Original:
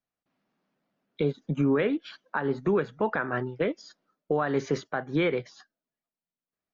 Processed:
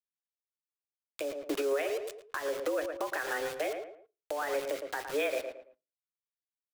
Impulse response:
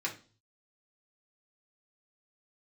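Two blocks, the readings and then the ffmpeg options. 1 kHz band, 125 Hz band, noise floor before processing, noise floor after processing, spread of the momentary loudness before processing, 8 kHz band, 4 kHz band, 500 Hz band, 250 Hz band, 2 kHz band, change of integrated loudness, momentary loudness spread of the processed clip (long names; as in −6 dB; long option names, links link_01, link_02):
−5.0 dB, below −25 dB, below −85 dBFS, below −85 dBFS, 6 LU, can't be measured, 0.0 dB, −4.0 dB, −14.0 dB, −3.5 dB, −6.0 dB, 9 LU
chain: -filter_complex "[0:a]aeval=exprs='val(0)+0.5*0.00794*sgn(val(0))':channel_layout=same,highpass=frequency=160:width_type=q:width=0.5412,highpass=frequency=160:width_type=q:width=1.307,lowpass=frequency=3200:width_type=q:width=0.5176,lowpass=frequency=3200:width_type=q:width=0.7071,lowpass=frequency=3200:width_type=q:width=1.932,afreqshift=140,aeval=exprs='val(0)*gte(abs(val(0)),0.0168)':channel_layout=same,acompressor=mode=upward:threshold=-35dB:ratio=2.5,highshelf=frequency=2600:gain=8,asplit=2[link_01][link_02];[link_02]adelay=111,lowpass=frequency=2000:poles=1,volume=-10dB,asplit=2[link_03][link_04];[link_04]adelay=111,lowpass=frequency=2000:poles=1,volume=0.29,asplit=2[link_05][link_06];[link_06]adelay=111,lowpass=frequency=2000:poles=1,volume=0.29[link_07];[link_01][link_03][link_05][link_07]amix=inputs=4:normalize=0,acompressor=threshold=-25dB:ratio=6,alimiter=limit=-23dB:level=0:latency=1:release=431,asplit=2[link_08][link_09];[1:a]atrim=start_sample=2205,asetrate=61740,aresample=44100[link_10];[link_09][link_10]afir=irnorm=-1:irlink=0,volume=-13.5dB[link_11];[link_08][link_11]amix=inputs=2:normalize=0"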